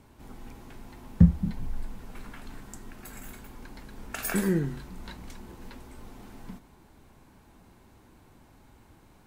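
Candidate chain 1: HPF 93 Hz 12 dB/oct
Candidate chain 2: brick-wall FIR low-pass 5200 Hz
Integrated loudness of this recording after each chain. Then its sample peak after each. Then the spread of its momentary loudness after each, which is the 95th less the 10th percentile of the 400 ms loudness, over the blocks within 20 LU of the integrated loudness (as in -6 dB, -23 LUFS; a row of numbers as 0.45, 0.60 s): -28.0, -27.5 LUFS; -6.5, -5.0 dBFS; 24, 25 LU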